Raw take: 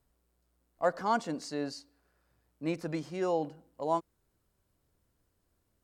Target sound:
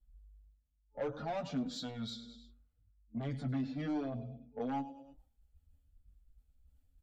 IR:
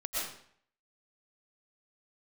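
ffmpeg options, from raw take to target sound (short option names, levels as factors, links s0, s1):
-filter_complex "[0:a]equalizer=f=110:w=5.8:g=-4.5,asplit=2[s0][s1];[s1]adelay=19,volume=0.211[s2];[s0][s2]amix=inputs=2:normalize=0,afftdn=nr=34:nf=-59,superequalizer=6b=1.78:7b=0.251:10b=0.447:13b=1.41:15b=0.631,asetrate=36603,aresample=44100,asplit=2[s3][s4];[s4]aecho=0:1:102|204|306:0.141|0.048|0.0163[s5];[s3][s5]amix=inputs=2:normalize=0,acrossover=split=130[s6][s7];[s7]acompressor=threshold=0.00355:ratio=2[s8];[s6][s8]amix=inputs=2:normalize=0,asoftclip=type=tanh:threshold=0.0119,areverse,acompressor=mode=upward:threshold=0.00158:ratio=2.5,areverse,asplit=2[s9][s10];[s10]adelay=7.5,afreqshift=0.97[s11];[s9][s11]amix=inputs=2:normalize=1,volume=3.16"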